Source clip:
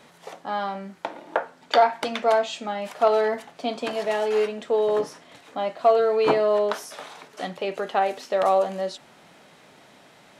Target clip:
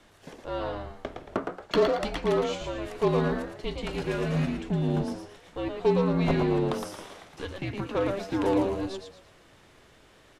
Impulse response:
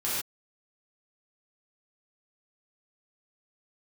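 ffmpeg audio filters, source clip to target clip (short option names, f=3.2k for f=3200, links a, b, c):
-filter_complex "[0:a]aeval=exprs='0.447*(cos(1*acos(clip(val(0)/0.447,-1,1)))-cos(1*PI/2))+0.02*(cos(8*acos(clip(val(0)/0.447,-1,1)))-cos(8*PI/2))':c=same,asplit=5[a][b][c][d][e];[b]adelay=113,afreqshift=86,volume=-5.5dB[f];[c]adelay=226,afreqshift=172,volume=-14.9dB[g];[d]adelay=339,afreqshift=258,volume=-24.2dB[h];[e]adelay=452,afreqshift=344,volume=-33.6dB[i];[a][f][g][h][i]amix=inputs=5:normalize=0,afreqshift=-270,volume=-5.5dB"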